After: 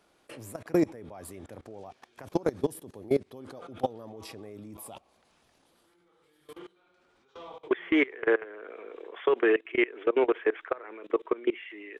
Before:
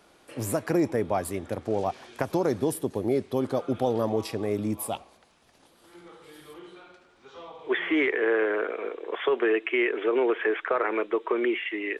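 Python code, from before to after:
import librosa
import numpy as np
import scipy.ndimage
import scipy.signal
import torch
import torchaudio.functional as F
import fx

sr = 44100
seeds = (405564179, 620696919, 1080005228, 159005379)

y = fx.level_steps(x, sr, step_db=23)
y = F.gain(torch.from_numpy(y), 2.0).numpy()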